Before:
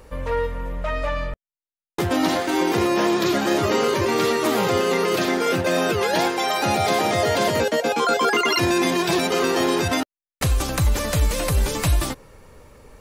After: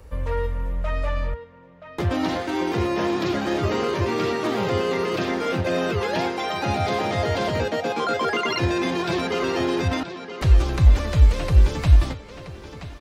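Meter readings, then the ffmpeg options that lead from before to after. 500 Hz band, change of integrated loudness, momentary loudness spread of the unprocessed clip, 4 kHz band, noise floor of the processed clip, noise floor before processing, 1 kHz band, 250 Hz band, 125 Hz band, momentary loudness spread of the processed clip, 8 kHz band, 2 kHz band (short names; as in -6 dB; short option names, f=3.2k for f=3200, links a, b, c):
-3.5 dB, -2.0 dB, 8 LU, -5.5 dB, -42 dBFS, under -85 dBFS, -4.0 dB, -2.5 dB, +4.0 dB, 10 LU, -11.5 dB, -4.0 dB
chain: -filter_complex "[0:a]equalizer=f=66:w=0.81:g=12,acrossover=split=110|5600[a][b][c];[b]aecho=1:1:976|1952|2928|3904:0.282|0.116|0.0474|0.0194[d];[c]acompressor=threshold=-49dB:ratio=12[e];[a][d][e]amix=inputs=3:normalize=0,volume=-4.5dB"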